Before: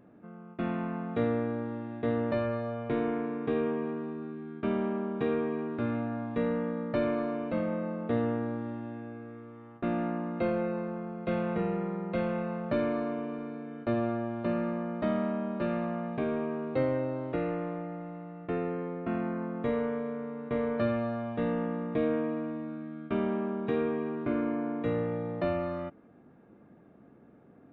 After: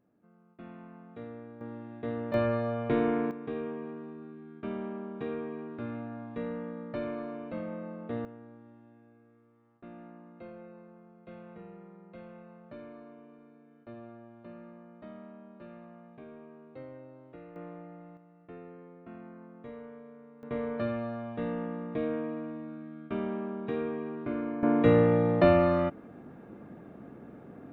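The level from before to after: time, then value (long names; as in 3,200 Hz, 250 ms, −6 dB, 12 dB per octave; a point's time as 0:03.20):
−15 dB
from 0:01.61 −5.5 dB
from 0:02.34 +3 dB
from 0:03.31 −6.5 dB
from 0:08.25 −17.5 dB
from 0:17.56 −9 dB
from 0:18.17 −15 dB
from 0:20.43 −3.5 dB
from 0:24.63 +9 dB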